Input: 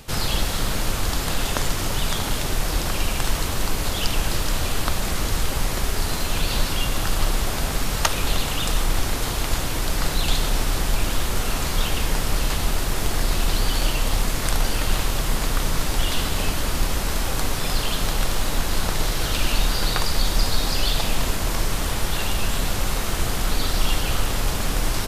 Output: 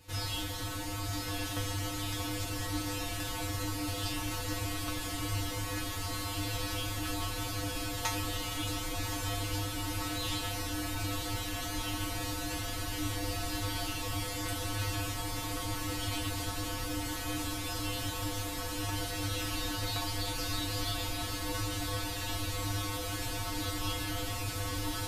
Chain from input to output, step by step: peaking EQ 290 Hz +4.5 dB 0.37 oct; feedback comb 100 Hz, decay 0.28 s, harmonics odd, mix 100%; echo that smears into a reverb 1106 ms, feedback 69%, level -5.5 dB

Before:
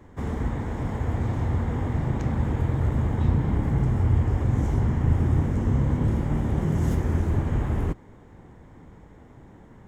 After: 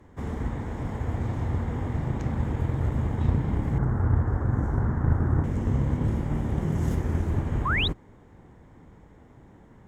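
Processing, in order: 3.78–5.44 s: resonant high shelf 2 kHz -9.5 dB, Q 3; Chebyshev shaper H 3 -20 dB, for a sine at -9.5 dBFS; 7.65–7.88 s: painted sound rise 970–4100 Hz -26 dBFS

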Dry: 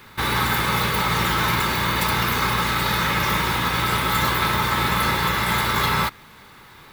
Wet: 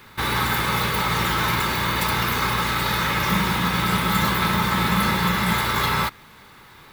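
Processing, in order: 3.26–5.53 s: peaking EQ 190 Hz +13.5 dB 0.27 oct; trim -1 dB

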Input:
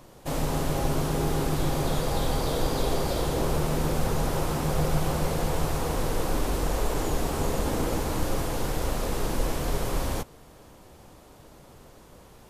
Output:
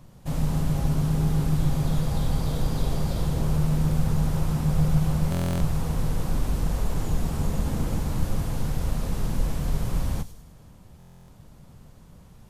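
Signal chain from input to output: resonant low shelf 250 Hz +9.5 dB, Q 1.5; feedback echo behind a high-pass 100 ms, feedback 47%, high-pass 4.3 kHz, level -8 dB; on a send at -21 dB: reverberation RT60 0.70 s, pre-delay 11 ms; on the sum: buffer glitch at 5.30/10.98 s, samples 1024, times 12; trim -6 dB

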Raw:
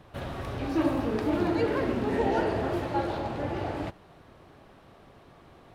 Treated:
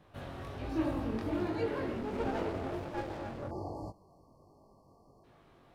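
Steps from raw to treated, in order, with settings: 0.64–1.38 s: bass shelf 120 Hz +8 dB; 3.40–5.24 s: spectral selection erased 1.2–4.2 kHz; chorus 1.3 Hz, delay 19 ms, depth 3.5 ms; 2.01–3.51 s: sliding maximum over 17 samples; trim -5 dB

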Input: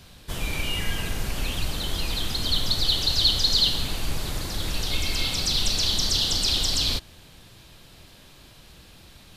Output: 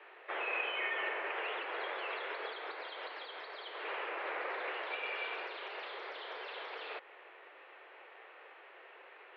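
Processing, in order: tilt shelf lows -4 dB, about 760 Hz; compression 6:1, threshold -25 dBFS, peak gain reduction 12.5 dB; mistuned SSB +190 Hz 220–2200 Hz; trim +1 dB

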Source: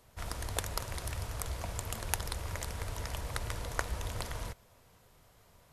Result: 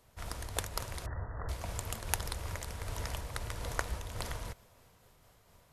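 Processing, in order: 1.06–1.49 s: brick-wall FIR low-pass 2 kHz; random flutter of the level, depth 55%; trim +1.5 dB

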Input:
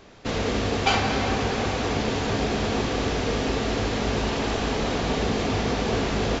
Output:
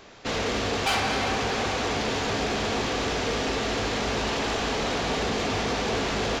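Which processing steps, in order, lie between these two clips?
bass shelf 400 Hz -8 dB; saturation -23.5 dBFS, distortion -14 dB; trim +3.5 dB

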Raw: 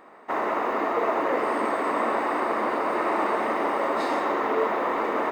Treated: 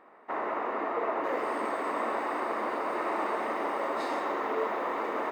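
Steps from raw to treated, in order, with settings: tone controls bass -4 dB, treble -11 dB, from 1.23 s treble +1 dB; trim -6 dB

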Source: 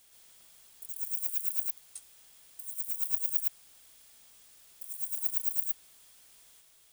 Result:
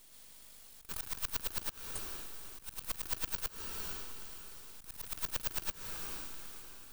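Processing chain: half-wave rectifier; echo that smears into a reverb 495 ms, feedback 40%, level -13 dB; slow attack 165 ms; trim +6 dB

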